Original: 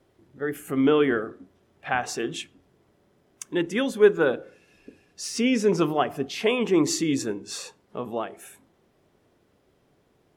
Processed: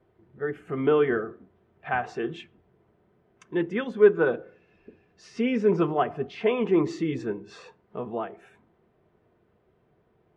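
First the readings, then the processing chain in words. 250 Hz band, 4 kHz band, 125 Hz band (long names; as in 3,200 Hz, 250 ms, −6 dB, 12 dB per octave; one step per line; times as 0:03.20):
−3.0 dB, −11.0 dB, 0.0 dB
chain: low-pass filter 2,100 Hz 12 dB per octave
notch comb filter 280 Hz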